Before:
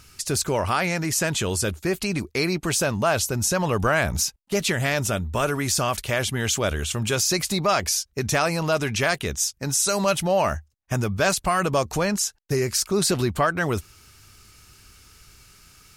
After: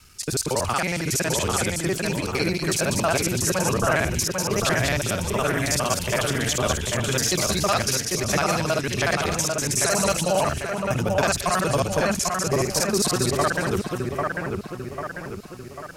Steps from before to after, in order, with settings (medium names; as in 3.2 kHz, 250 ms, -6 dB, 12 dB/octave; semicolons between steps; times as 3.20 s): time reversed locally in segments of 46 ms; two-band feedback delay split 2.7 kHz, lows 795 ms, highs 195 ms, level -3.5 dB; trim -1 dB